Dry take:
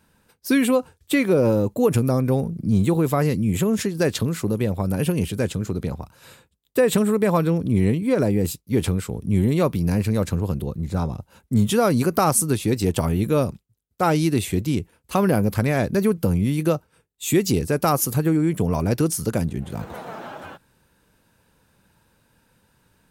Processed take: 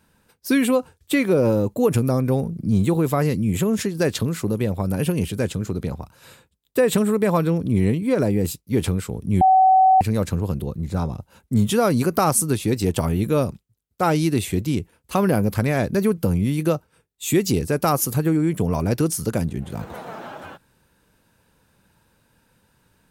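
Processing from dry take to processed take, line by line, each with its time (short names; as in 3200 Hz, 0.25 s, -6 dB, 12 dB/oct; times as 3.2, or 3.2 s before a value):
9.41–10.01 bleep 757 Hz -10.5 dBFS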